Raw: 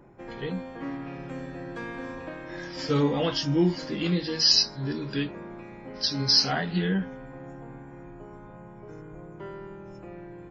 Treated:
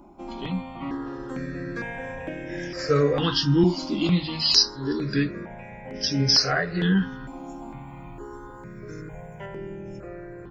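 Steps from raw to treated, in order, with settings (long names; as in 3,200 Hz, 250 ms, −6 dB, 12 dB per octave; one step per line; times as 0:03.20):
0:06.97–0:09.46: high-shelf EQ 2,400 Hz +9.5 dB
step-sequenced phaser 2.2 Hz 470–4,200 Hz
level +7 dB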